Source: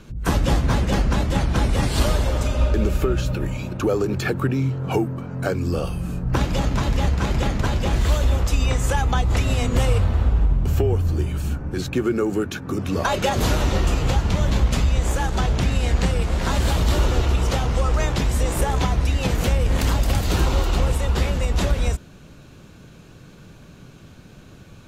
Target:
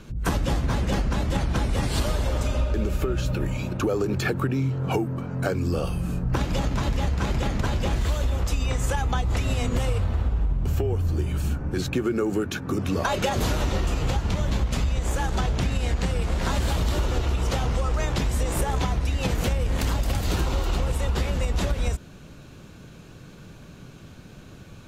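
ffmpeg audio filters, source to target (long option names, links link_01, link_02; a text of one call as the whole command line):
ffmpeg -i in.wav -af "acompressor=threshold=-20dB:ratio=6" out.wav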